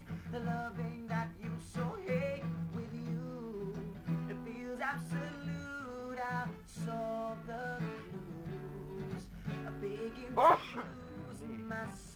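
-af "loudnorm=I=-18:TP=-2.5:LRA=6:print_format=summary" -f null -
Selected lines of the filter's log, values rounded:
Input Integrated:    -38.3 LUFS
Input True Peak:     -16.2 dBTP
Input LRA:             5.5 LU
Input Threshold:     -48.3 LUFS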